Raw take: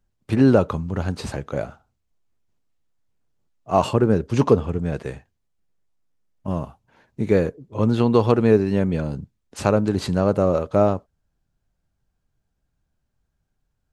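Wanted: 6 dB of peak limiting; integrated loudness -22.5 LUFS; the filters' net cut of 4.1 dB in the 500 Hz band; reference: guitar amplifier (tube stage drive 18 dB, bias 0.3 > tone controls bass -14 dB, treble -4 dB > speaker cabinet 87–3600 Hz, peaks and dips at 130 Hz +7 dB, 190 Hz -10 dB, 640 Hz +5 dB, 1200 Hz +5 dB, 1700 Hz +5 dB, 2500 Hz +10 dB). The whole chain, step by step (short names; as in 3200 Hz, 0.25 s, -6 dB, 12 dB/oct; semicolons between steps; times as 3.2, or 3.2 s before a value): bell 500 Hz -6 dB; limiter -10 dBFS; tube stage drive 18 dB, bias 0.3; tone controls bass -14 dB, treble -4 dB; speaker cabinet 87–3600 Hz, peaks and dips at 130 Hz +7 dB, 190 Hz -10 dB, 640 Hz +5 dB, 1200 Hz +5 dB, 1700 Hz +5 dB, 2500 Hz +10 dB; gain +8 dB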